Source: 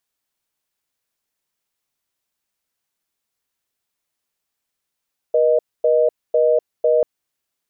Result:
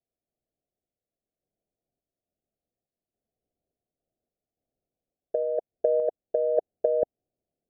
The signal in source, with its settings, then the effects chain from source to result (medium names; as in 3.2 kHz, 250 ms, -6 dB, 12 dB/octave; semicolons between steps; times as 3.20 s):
call progress tone reorder tone, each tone -15 dBFS 1.69 s
steep low-pass 750 Hz 96 dB/octave; compressor with a negative ratio -19 dBFS, ratio -0.5; random-step tremolo